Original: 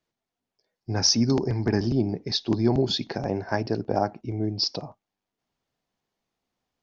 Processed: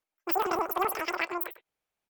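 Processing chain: wide varispeed 3.26×; on a send: delay 98 ms -15 dB; on the sum: trim -5 dB

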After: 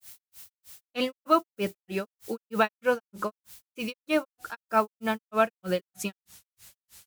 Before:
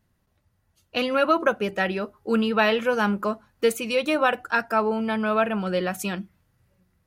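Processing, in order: added noise blue -45 dBFS; granulator 191 ms, grains 3.2 per s, spray 25 ms, pitch spread up and down by 0 st

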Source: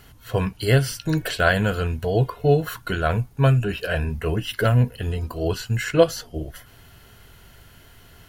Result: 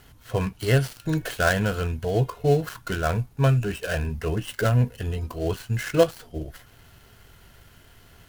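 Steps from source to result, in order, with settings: dead-time distortion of 0.098 ms; trim -2.5 dB

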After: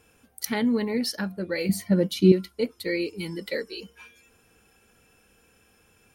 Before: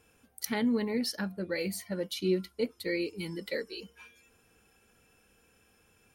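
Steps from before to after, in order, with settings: 1.69–2.32 s: peaking EQ 170 Hz +12 dB 2.6 oct; trim +4.5 dB

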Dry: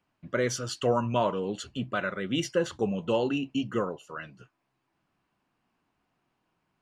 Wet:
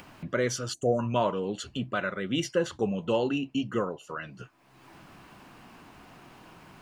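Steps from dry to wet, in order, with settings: time-frequency box 0.74–0.99 s, 790–5900 Hz -26 dB; upward compressor, threshold -30 dBFS

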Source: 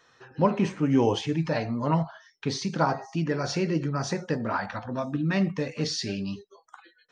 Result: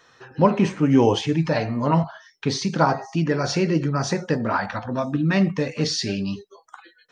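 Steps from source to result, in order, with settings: 1.52–2.04 s: de-hum 77.31 Hz, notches 40; trim +5.5 dB

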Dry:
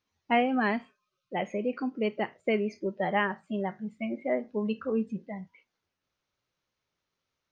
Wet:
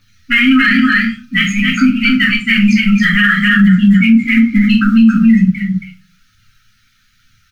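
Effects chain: dynamic bell 3.8 kHz, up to +4 dB, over -46 dBFS, Q 0.75; in parallel at -0.5 dB: compressor with a negative ratio -29 dBFS; on the sum: phaser 1.1 Hz, delay 4.2 ms, feedback 66%; brick-wall FIR band-stop 260–1200 Hz; on a send: delay 273 ms -4.5 dB; on the sum: simulated room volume 130 m³, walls furnished, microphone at 2.3 m; loudness maximiser +14.5 dB; trim -1 dB

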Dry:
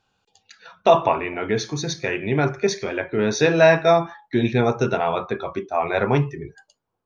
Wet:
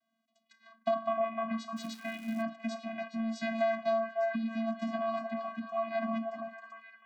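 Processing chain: vocoder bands 16, square 225 Hz; repeats whose band climbs or falls 303 ms, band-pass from 850 Hz, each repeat 0.7 oct, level -4 dB; compression 6:1, threshold -19 dBFS, peak gain reduction 8.5 dB; 1.76–2.41 s: crackle 530 per s -38 dBFS; Bessel high-pass 170 Hz; peaking EQ 270 Hz -7.5 dB 1.6 oct; band-stop 570 Hz, Q 12; small resonant body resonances 310/2200 Hz, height 8 dB; trim -5 dB

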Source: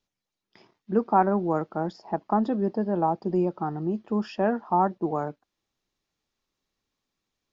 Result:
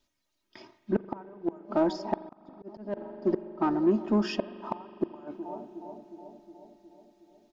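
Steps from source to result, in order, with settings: comb 3.2 ms, depth 76%; on a send: bucket-brigade echo 363 ms, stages 2048, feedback 63%, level -21 dB; on the sum: inverted gate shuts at -16 dBFS, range -33 dB; in parallel at -3.5 dB: saturation -28.5 dBFS, distortion -8 dB; on the sum: spring tank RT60 3.7 s, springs 41 ms, chirp 35 ms, DRR 14.5 dB; 2.15–2.97 s: slow attack 434 ms

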